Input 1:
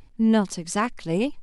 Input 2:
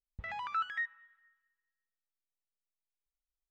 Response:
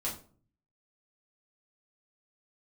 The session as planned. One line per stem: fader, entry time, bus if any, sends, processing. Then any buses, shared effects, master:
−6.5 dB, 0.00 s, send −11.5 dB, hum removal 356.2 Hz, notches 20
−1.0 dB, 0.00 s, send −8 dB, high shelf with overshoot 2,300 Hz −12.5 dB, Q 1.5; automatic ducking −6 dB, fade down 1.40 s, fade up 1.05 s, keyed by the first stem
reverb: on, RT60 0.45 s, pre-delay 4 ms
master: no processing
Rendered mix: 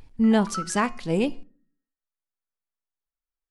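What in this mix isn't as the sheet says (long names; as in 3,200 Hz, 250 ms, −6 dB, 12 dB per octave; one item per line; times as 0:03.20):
stem 1 −6.5 dB → 0.0 dB
reverb return −10.0 dB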